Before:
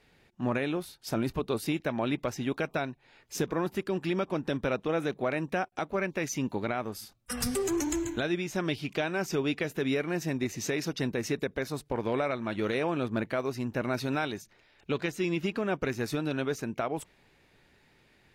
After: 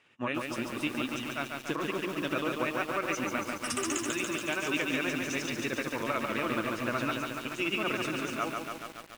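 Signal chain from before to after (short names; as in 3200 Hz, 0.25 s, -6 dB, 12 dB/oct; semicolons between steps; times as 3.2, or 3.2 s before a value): speaker cabinet 160–9300 Hz, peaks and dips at 180 Hz -10 dB, 430 Hz -8 dB, 760 Hz -7 dB, 1200 Hz +7 dB, 2800 Hz +9 dB, 4400 Hz -9 dB; granular stretch 0.5×, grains 0.122 s; lo-fi delay 0.142 s, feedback 80%, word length 8-bit, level -3.5 dB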